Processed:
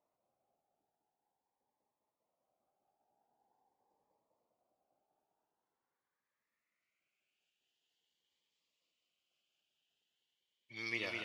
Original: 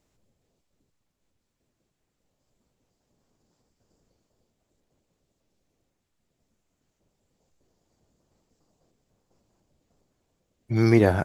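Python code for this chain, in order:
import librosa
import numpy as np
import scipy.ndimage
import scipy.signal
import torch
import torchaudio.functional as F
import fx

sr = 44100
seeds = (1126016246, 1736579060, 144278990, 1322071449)

p1 = fx.filter_sweep_bandpass(x, sr, from_hz=810.0, to_hz=3000.0, start_s=4.93, end_s=7.56, q=6.0)
p2 = p1 + fx.echo_feedback(p1, sr, ms=203, feedback_pct=59, wet_db=-4.0, dry=0)
p3 = fx.notch_cascade(p2, sr, direction='rising', hz=0.45)
y = p3 * librosa.db_to_amplitude(6.5)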